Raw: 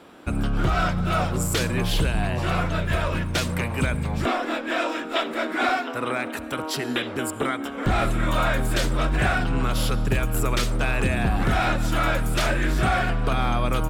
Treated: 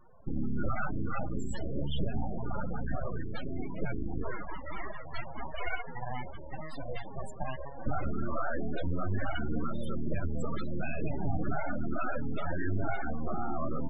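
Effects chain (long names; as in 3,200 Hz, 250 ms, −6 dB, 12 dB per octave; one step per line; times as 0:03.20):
full-wave rectification
spectral peaks only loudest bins 16
level −5 dB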